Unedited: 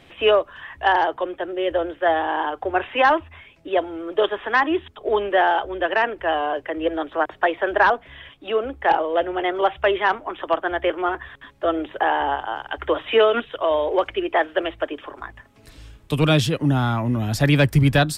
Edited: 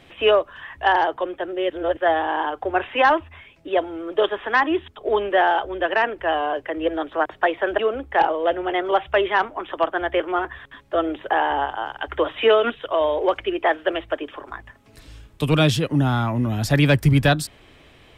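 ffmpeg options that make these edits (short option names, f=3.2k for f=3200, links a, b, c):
-filter_complex "[0:a]asplit=4[a][b][c][d];[a]atrim=end=1.702[e];[b]atrim=start=1.698:end=1.972,asetpts=PTS-STARTPTS,areverse[f];[c]atrim=start=1.968:end=7.792[g];[d]atrim=start=8.488[h];[e][f]acrossfade=d=0.004:c1=hsin:c2=hsin[i];[i][g]acrossfade=d=0.004:c1=hsin:c2=hsin[j];[j][h]acrossfade=d=0.004:c1=hsin:c2=hsin"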